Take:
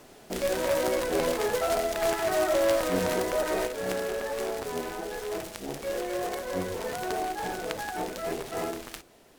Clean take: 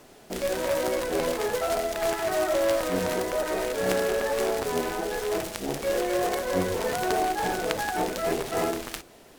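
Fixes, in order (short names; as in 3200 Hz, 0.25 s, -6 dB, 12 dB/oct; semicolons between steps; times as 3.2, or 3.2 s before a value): gain correction +5.5 dB, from 3.67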